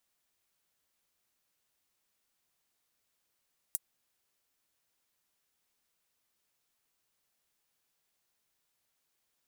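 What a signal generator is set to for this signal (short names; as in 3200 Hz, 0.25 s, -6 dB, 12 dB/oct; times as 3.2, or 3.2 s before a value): closed hi-hat, high-pass 8700 Hz, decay 0.04 s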